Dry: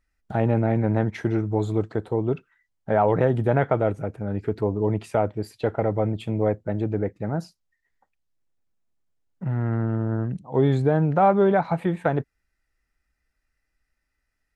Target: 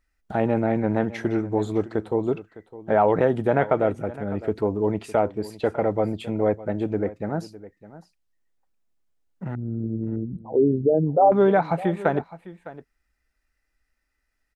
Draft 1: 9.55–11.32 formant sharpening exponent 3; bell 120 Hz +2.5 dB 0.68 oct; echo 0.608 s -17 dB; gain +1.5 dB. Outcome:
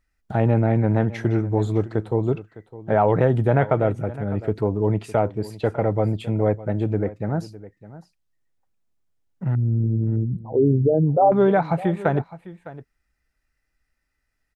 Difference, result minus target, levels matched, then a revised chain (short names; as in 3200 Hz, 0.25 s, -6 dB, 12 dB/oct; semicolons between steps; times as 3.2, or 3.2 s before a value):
125 Hz band +7.0 dB
9.55–11.32 formant sharpening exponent 3; bell 120 Hz -9 dB 0.68 oct; echo 0.608 s -17 dB; gain +1.5 dB